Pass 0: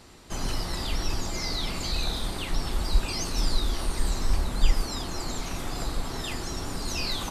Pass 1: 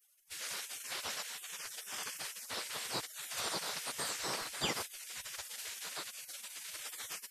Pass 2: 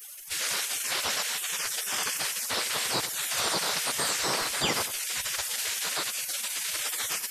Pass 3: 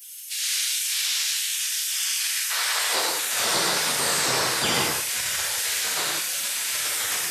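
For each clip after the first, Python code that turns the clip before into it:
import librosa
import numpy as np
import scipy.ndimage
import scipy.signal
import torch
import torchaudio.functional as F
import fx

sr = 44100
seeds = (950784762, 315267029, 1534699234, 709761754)

y1 = fx.spec_gate(x, sr, threshold_db=-30, keep='weak')
y1 = fx.low_shelf(y1, sr, hz=66.0, db=9.0)
y1 = F.gain(torch.from_numpy(y1), 1.0).numpy()
y2 = fx.echo_feedback(y1, sr, ms=92, feedback_pct=29, wet_db=-19.5)
y2 = fx.env_flatten(y2, sr, amount_pct=50)
y2 = F.gain(torch.from_numpy(y2), 7.0).numpy()
y3 = fx.filter_sweep_highpass(y2, sr, from_hz=2900.0, to_hz=75.0, start_s=2.14, end_s=3.77, q=1.0)
y3 = fx.rev_gated(y3, sr, seeds[0], gate_ms=210, shape='flat', drr_db=-4.0)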